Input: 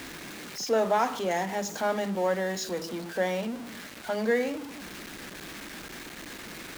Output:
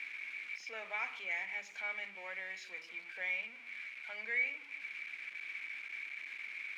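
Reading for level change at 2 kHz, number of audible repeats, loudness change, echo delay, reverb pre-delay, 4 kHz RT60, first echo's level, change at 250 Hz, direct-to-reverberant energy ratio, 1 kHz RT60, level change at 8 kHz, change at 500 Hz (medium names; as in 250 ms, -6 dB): -0.5 dB, no echo, -9.0 dB, no echo, no reverb, no reverb, no echo, -33.0 dB, no reverb, no reverb, under -20 dB, -25.5 dB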